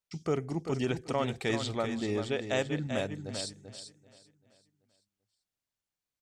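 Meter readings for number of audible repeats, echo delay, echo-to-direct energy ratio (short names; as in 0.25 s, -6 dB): 3, 0.39 s, -8.0 dB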